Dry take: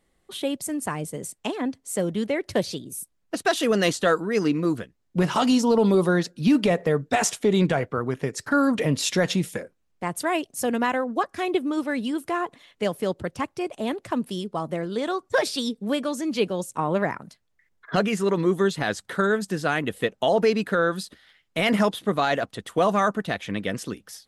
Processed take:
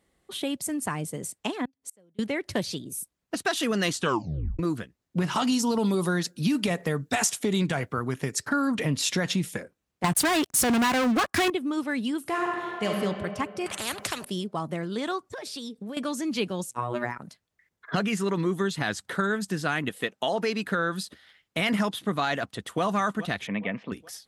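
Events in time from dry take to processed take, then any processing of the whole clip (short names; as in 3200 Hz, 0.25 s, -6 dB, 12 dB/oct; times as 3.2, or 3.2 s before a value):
1.65–2.19 flipped gate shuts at -24 dBFS, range -35 dB
3.99 tape stop 0.60 s
5.52–8.39 high shelf 5900 Hz +10 dB
10.04–11.5 sample leveller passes 5
12.21–12.9 reverb throw, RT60 2.2 s, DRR -1.5 dB
13.66–14.25 spectral compressor 4:1
15.24–15.97 compressor 10:1, threshold -33 dBFS
16.71–17.18 robotiser 121 Hz
19.89–20.64 bell 63 Hz -13.5 dB 2.5 oct
22.4–22.83 echo throw 0.42 s, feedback 35%, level -15 dB
23.47–23.92 speaker cabinet 190–2600 Hz, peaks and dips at 210 Hz +4 dB, 340 Hz -10 dB, 630 Hz +4 dB, 930 Hz +4 dB, 1500 Hz -7 dB, 2300 Hz +6 dB
whole clip: HPF 44 Hz; dynamic EQ 510 Hz, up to -7 dB, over -36 dBFS, Q 1.3; compressor, threshold -21 dBFS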